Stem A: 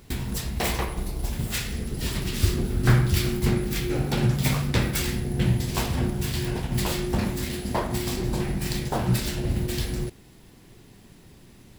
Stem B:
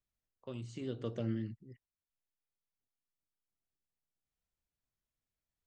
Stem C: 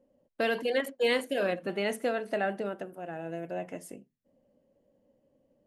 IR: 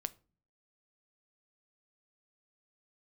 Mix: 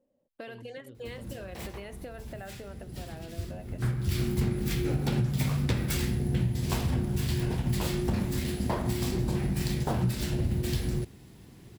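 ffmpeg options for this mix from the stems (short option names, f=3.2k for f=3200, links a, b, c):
-filter_complex "[0:a]highpass=59,adelay=950,volume=-3.5dB[a];[1:a]tremolo=f=1.8:d=0.4,volume=-11dB[b];[2:a]acompressor=threshold=-34dB:ratio=5,volume=-6.5dB,asplit=2[c][d];[d]apad=whole_len=561633[e];[a][e]sidechaincompress=threshold=-56dB:ratio=16:attack=16:release=293[f];[f][b]amix=inputs=2:normalize=0,lowshelf=f=250:g=7.5,acompressor=threshold=-24dB:ratio=5,volume=0dB[g];[c][g]amix=inputs=2:normalize=0"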